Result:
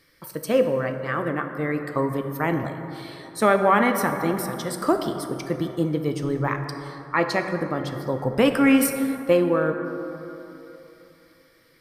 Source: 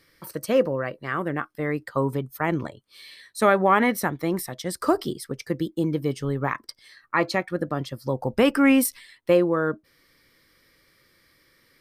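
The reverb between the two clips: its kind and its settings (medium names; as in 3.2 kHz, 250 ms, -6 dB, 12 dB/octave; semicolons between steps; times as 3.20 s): plate-style reverb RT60 3.2 s, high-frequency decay 0.35×, DRR 5.5 dB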